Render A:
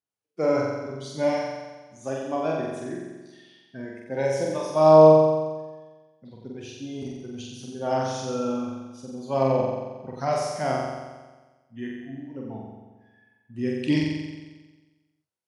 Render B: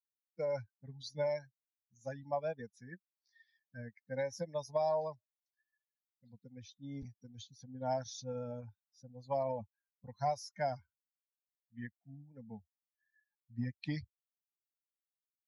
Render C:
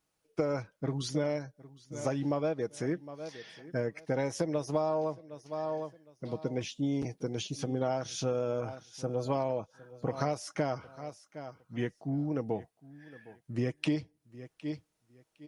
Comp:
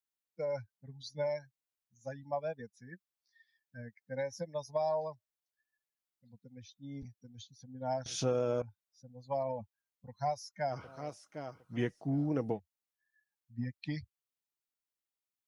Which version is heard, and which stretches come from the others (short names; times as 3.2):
B
8.06–8.62 from C
10.74–12.55 from C, crossfade 0.10 s
not used: A